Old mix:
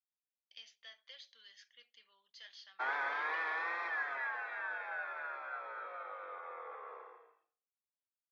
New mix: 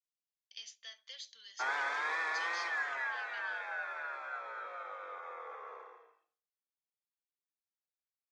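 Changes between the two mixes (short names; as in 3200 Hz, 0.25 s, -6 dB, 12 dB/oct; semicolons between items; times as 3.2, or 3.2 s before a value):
background: entry -1.20 s; master: remove air absorption 230 m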